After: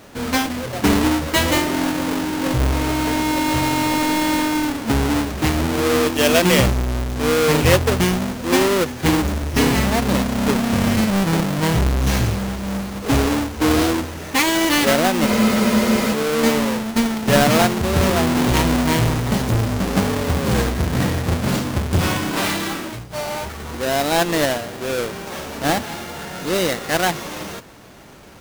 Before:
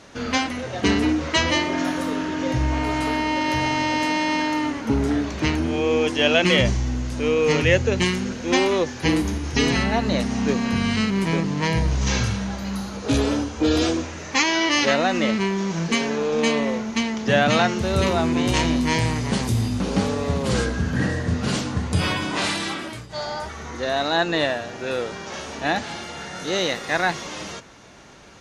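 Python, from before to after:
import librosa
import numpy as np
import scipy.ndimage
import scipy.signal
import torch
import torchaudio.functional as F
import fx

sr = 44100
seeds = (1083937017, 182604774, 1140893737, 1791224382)

y = fx.halfwave_hold(x, sr)
y = fx.spec_freeze(y, sr, seeds[0], at_s=15.27, hold_s=0.85)
y = F.gain(torch.from_numpy(y), -1.5).numpy()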